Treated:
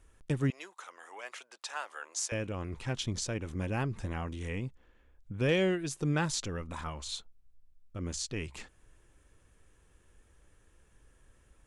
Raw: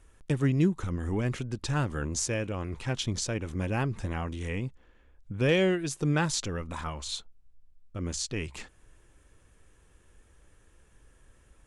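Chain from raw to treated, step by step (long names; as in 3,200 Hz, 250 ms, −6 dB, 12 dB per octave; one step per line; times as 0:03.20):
0:00.50–0:02.32: high-pass filter 660 Hz 24 dB per octave
level −3.5 dB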